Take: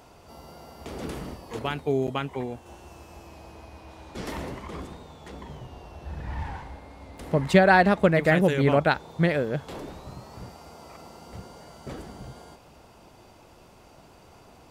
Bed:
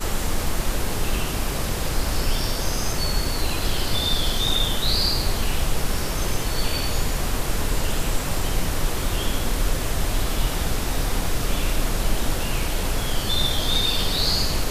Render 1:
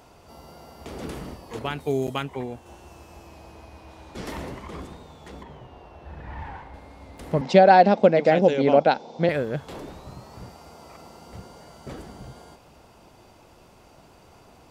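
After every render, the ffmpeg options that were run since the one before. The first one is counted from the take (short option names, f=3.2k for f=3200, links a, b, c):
-filter_complex "[0:a]asettb=1/sr,asplit=3[a][b][c];[a]atrim=end=1.804[d];[b]atrim=start=1.8:end=2.23,asetpts=PTS-STARTPTS,afade=t=in:d=0.004:c=qsin,afade=t=out:st=0.426:d=0.004:c=qsin,highshelf=f=5.1k:g=11.5[e];[c]atrim=start=2.226[f];[d][e]acrossfade=d=0.004:c1=hsin:c2=qsin[g];[g][f]acrossfade=d=0.004:c1=qsin:c2=hsin,asettb=1/sr,asplit=3[h][i][j];[h]atrim=end=5.434[k];[i]atrim=start=5.43:end=6.74,asetpts=PTS-STARTPTS,afade=t=in:d=0.004:c=qsin,afade=t=out:st=1.306:d=0.004:c=qsin,bass=f=250:g=-5,treble=f=4k:g=-11[l];[j]atrim=start=6.736[m];[k][l]acrossfade=d=0.004:c1=hsin:c2=qsin[n];[n][m]acrossfade=d=0.004:c1=qsin:c2=hsin,asettb=1/sr,asplit=3[o][p][q];[o]atrim=end=7.414[r];[p]atrim=start=7.41:end=9.29,asetpts=PTS-STARTPTS,afade=t=in:d=0.004:c=qsin,afade=t=out:st=1.876:d=0.004:c=qsin,highpass=220,equalizer=f=230:t=q:w=4:g=10,equalizer=f=520:t=q:w=4:g=7,equalizer=f=760:t=q:w=4:g=7,equalizer=f=1.2k:t=q:w=4:g=-7,equalizer=f=1.8k:t=q:w=4:g=-7,equalizer=f=5.3k:t=q:w=4:g=7,lowpass=f=6.3k:w=0.5412,lowpass=f=6.3k:w=1.3066[s];[q]atrim=start=9.286[t];[r][s]acrossfade=d=0.004:c1=hsin:c2=qsin[u];[u][t]acrossfade=d=0.004:c1=qsin:c2=hsin"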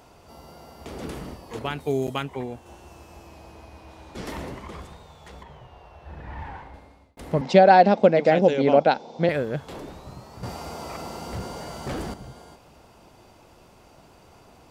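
-filter_complex "[0:a]asettb=1/sr,asplit=3[a][b][c];[a]atrim=end=4.724[d];[b]atrim=start=4.72:end=6.08,asetpts=PTS-STARTPTS,afade=t=in:d=0.004:c=qsin,afade=t=out:st=1.356:d=0.004:c=qsin,equalizer=f=280:w=1.3:g=-10[e];[c]atrim=start=6.076[f];[d][e]acrossfade=d=0.004:c1=hsin:c2=qsin[g];[g][f]acrossfade=d=0.004:c1=qsin:c2=hsin,asettb=1/sr,asplit=3[h][i][j];[h]atrim=end=10.434[k];[i]atrim=start=10.43:end=12.14,asetpts=PTS-STARTPTS,afade=t=in:d=0.004:c=qsin,afade=t=out:st=1.706:d=0.004:c=qsin,aeval=exprs='0.0501*sin(PI/2*2.24*val(0)/0.0501)':c=same[l];[j]atrim=start=12.136[m];[k][l]acrossfade=d=0.004:c1=hsin:c2=qsin[n];[n][m]acrossfade=d=0.004:c1=qsin:c2=hsin,asplit=2[o][p];[o]atrim=end=7.17,asetpts=PTS-STARTPTS,afade=t=out:st=6.66:d=0.51[q];[p]atrim=start=7.17,asetpts=PTS-STARTPTS,afade=t=in:d=0.004:c=hsin[r];[q][r]concat=n=2:v=0:a=1"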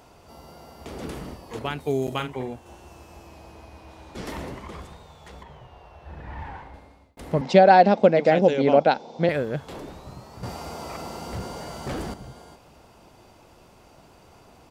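-filter_complex "[0:a]asplit=3[a][b][c];[a]afade=t=out:st=2.1:d=0.02[d];[b]asplit=2[e][f];[f]adelay=46,volume=-8dB[g];[e][g]amix=inputs=2:normalize=0,afade=t=in:st=2.1:d=0.02,afade=t=out:st=2.52:d=0.02[h];[c]afade=t=in:st=2.52:d=0.02[i];[d][h][i]amix=inputs=3:normalize=0"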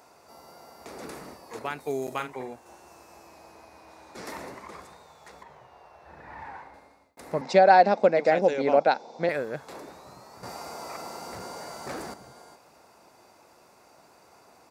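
-af "highpass=f=590:p=1,equalizer=f=3.1k:t=o:w=0.35:g=-12"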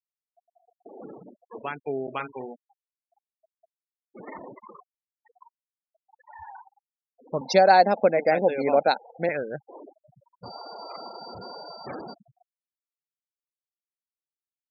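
-af "afftfilt=real='re*gte(hypot(re,im),0.0251)':imag='im*gte(hypot(re,im),0.0251)':win_size=1024:overlap=0.75,bass=f=250:g=1,treble=f=4k:g=13"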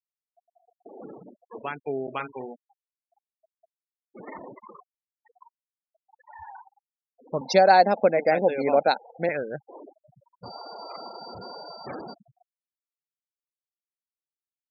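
-af anull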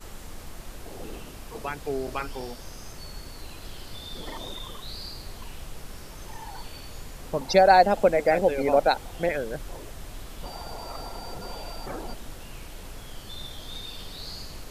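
-filter_complex "[1:a]volume=-17dB[a];[0:a][a]amix=inputs=2:normalize=0"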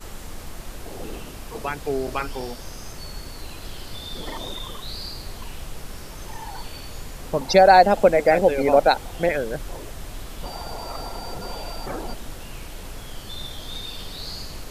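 -af "volume=4.5dB,alimiter=limit=-2dB:level=0:latency=1"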